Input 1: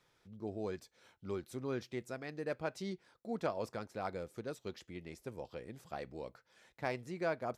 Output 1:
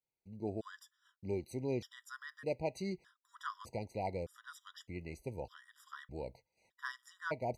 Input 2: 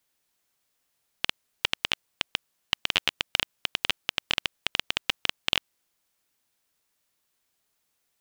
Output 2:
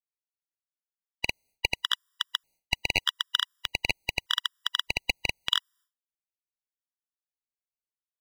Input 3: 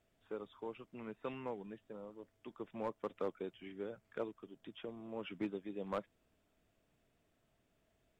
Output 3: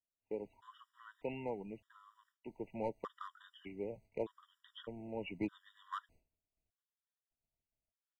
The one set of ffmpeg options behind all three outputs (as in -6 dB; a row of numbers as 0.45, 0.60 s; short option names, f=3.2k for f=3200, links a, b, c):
-af "asubboost=boost=2.5:cutoff=120,agate=range=-33dB:threshold=-57dB:ratio=3:detection=peak,afftfilt=real='re*gt(sin(2*PI*0.82*pts/sr)*(1-2*mod(floor(b*sr/1024/970),2)),0)':imag='im*gt(sin(2*PI*0.82*pts/sr)*(1-2*mod(floor(b*sr/1024/970),2)),0)':win_size=1024:overlap=0.75,volume=3dB"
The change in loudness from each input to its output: -0.5, 0.0, +0.5 LU